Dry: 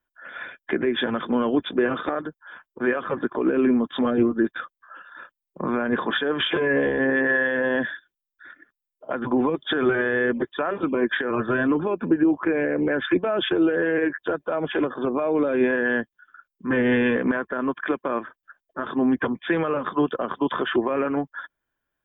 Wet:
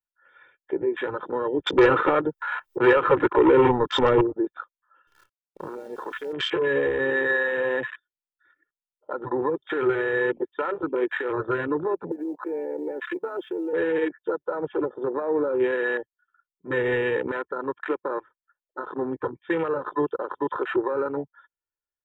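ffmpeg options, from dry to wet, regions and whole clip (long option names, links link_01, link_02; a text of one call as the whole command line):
ffmpeg -i in.wav -filter_complex "[0:a]asettb=1/sr,asplit=3[link_01][link_02][link_03];[link_01]atrim=end=1.664[link_04];[link_02]atrim=start=1.66:end=4.21,asetpts=PTS-STARTPTS,afade=type=in:duration=0.004:curve=qsin,afade=type=out:start_time=2.546:duration=0.004:curve=qsin,acompressor=mode=upward:threshold=-28dB:ratio=2.5:attack=3.2:release=140:knee=2.83:detection=peak,aeval=exprs='0.335*sin(PI/2*2.24*val(0)/0.335)':channel_layout=same[link_05];[link_03]atrim=start=4.206[link_06];[link_04][link_05]acrossfade=duration=0.004:curve1=hsin:curve2=qsin[link_07];[link_07][link_06]acrossfade=duration=0.004:curve1=qsin:curve2=hsin,asettb=1/sr,asplit=3[link_08][link_09][link_10];[link_08]atrim=end=5.074[link_11];[link_09]atrim=start=5.07:end=6.33,asetpts=PTS-STARTPTS,afade=type=in:duration=0.004:curve=qsin,afade=type=out:start_time=1.256:duration=0.004:curve=qsin,acompressor=threshold=-29dB:ratio=2.5:attack=3.2:release=140:knee=1:detection=peak,acrusher=bits=7:dc=4:mix=0:aa=0.000001[link_12];[link_10]atrim=start=6.326[link_13];[link_11][link_12]acrossfade=duration=0.004:curve1=hsin:curve2=qsin[link_14];[link_14][link_13]acrossfade=duration=0.004:curve1=qsin:curve2=hsin,asettb=1/sr,asplit=3[link_15][link_16][link_17];[link_15]atrim=end=12.114[link_18];[link_16]atrim=start=12.11:end=13.73,asetpts=PTS-STARTPTS,afade=type=in:duration=0.004:curve=qsin,afade=type=out:start_time=1.616:duration=0.004:curve=qsin,highpass=frequency=250:width=0.5412,highpass=frequency=250:width=1.3066,acompressor=threshold=-23dB:ratio=8:attack=3.2:release=140:knee=1:detection=peak,acrusher=bits=7:mode=log:mix=0:aa=0.000001[link_19];[link_17]atrim=start=13.726[link_20];[link_18][link_19]acrossfade=duration=0.004:curve1=hsin:curve2=qsin[link_21];[link_21][link_20]acrossfade=duration=0.004:curve1=qsin:curve2=hsin,equalizer=frequency=1100:width=5.5:gain=3.5,aecho=1:1:2.2:0.9,afwtdn=0.0562,volume=-5dB" out.wav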